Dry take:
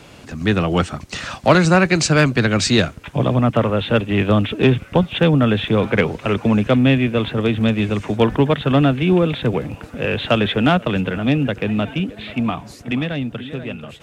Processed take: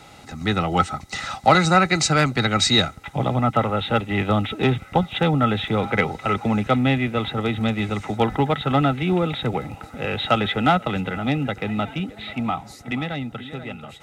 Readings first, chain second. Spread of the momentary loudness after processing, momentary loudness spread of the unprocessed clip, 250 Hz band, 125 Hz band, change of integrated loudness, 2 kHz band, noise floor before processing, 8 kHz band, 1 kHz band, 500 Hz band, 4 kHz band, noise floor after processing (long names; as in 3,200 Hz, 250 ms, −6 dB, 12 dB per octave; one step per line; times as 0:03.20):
12 LU, 10 LU, −5.5 dB, −5.0 dB, −4.0 dB, −3.0 dB, −41 dBFS, −1.5 dB, +2.0 dB, −5.5 dB, −0.5 dB, −44 dBFS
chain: bass and treble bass +2 dB, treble +6 dB
hollow resonant body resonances 810/1,300/2,000/3,800 Hz, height 16 dB, ringing for 45 ms
level −7 dB